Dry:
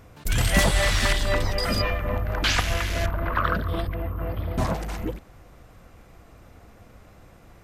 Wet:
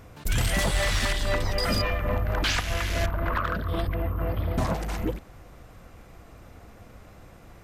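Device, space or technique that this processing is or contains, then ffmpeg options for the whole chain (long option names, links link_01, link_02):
limiter into clipper: -af "alimiter=limit=-15.5dB:level=0:latency=1:release=408,asoftclip=type=hard:threshold=-19.5dB,volume=1.5dB"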